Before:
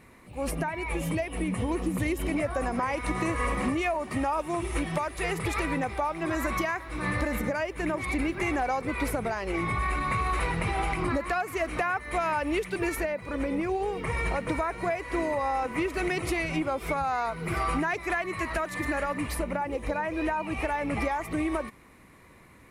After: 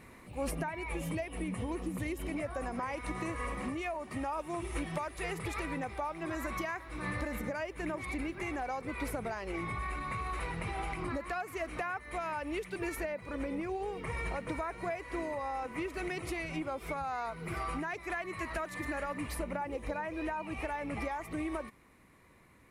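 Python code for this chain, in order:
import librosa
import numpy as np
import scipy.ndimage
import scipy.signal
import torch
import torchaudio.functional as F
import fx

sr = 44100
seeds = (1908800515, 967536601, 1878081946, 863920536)

y = fx.rider(x, sr, range_db=10, speed_s=0.5)
y = y * librosa.db_to_amplitude(-8.0)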